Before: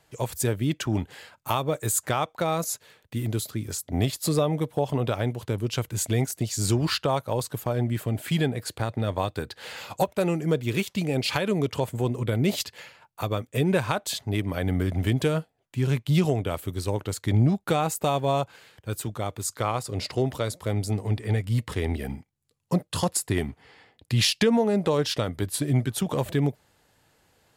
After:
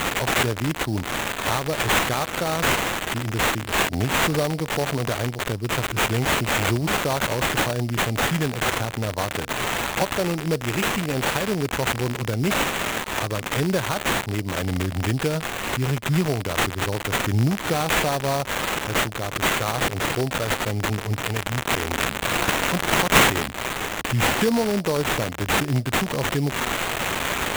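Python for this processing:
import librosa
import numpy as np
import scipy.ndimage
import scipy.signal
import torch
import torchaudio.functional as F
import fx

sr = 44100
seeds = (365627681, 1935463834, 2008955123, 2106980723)

y = x + 0.5 * 10.0 ** (-17.0 / 20.0) * np.diff(np.sign(x), prepend=np.sign(x[:1]))
y = fx.tilt_eq(y, sr, slope=1.5, at=(21.24, 23.47))
y = fx.sample_hold(y, sr, seeds[0], rate_hz=5100.0, jitter_pct=20)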